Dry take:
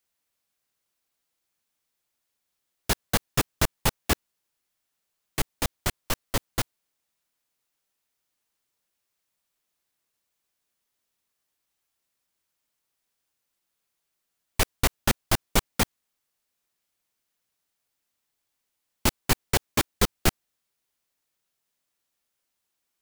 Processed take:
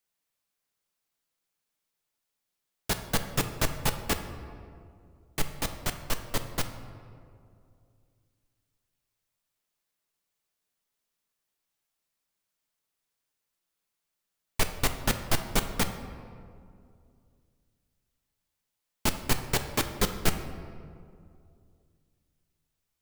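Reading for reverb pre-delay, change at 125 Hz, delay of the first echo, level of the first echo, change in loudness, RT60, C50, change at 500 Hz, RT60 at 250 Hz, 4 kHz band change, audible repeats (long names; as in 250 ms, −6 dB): 5 ms, −3.0 dB, no echo audible, no echo audible, −3.5 dB, 2.4 s, 9.0 dB, −2.5 dB, 2.8 s, −3.5 dB, no echo audible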